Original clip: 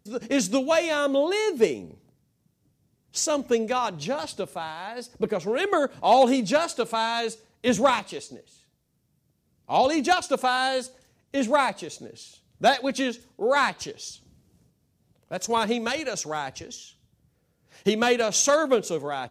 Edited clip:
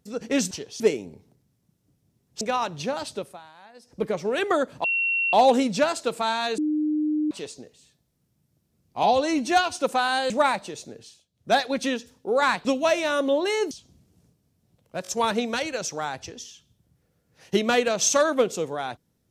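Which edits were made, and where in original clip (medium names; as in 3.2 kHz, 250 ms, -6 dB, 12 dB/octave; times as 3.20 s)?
0.51–1.57 s: swap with 13.79–14.08 s
3.18–3.63 s: delete
4.29–5.37 s: dip -13.5 dB, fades 0.33 s equal-power
6.06 s: add tone 2.73 kHz -21 dBFS 0.49 s
7.31–8.04 s: bleep 304 Hz -21 dBFS
9.76–10.24 s: stretch 1.5×
10.79–11.44 s: delete
12.12–12.73 s: dip -14.5 dB, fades 0.27 s
15.40 s: stutter 0.02 s, 3 plays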